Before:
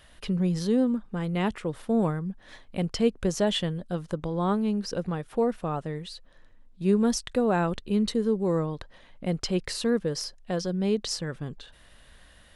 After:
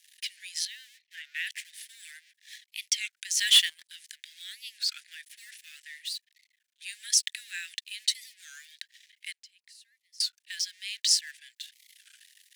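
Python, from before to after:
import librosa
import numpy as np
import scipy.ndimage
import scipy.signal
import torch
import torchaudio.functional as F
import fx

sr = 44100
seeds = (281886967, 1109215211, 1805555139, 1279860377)

y = fx.lowpass(x, sr, hz=3300.0, slope=12, at=(0.65, 1.47))
y = np.sign(y) * np.maximum(np.abs(y) - 10.0 ** (-52.5 / 20.0), 0.0)
y = fx.gate_flip(y, sr, shuts_db=-29.0, range_db=-28, at=(9.32, 10.23))
y = scipy.signal.sosfilt(scipy.signal.butter(16, 1700.0, 'highpass', fs=sr, output='sos'), y)
y = fx.leveller(y, sr, passes=2, at=(3.39, 3.91))
y = fx.high_shelf(y, sr, hz=2200.0, db=11.5)
y = fx.record_warp(y, sr, rpm=33.33, depth_cents=250.0)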